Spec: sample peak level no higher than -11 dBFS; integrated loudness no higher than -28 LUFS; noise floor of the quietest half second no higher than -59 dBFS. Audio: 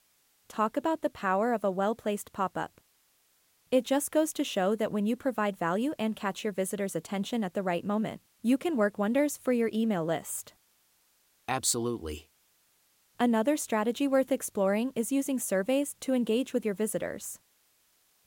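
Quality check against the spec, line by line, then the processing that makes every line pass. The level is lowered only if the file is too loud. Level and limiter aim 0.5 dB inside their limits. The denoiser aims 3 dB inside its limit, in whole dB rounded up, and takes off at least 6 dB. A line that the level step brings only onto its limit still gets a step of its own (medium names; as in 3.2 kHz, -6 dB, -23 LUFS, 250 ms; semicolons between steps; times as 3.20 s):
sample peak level -13.0 dBFS: pass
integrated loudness -30.0 LUFS: pass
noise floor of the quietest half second -69 dBFS: pass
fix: none needed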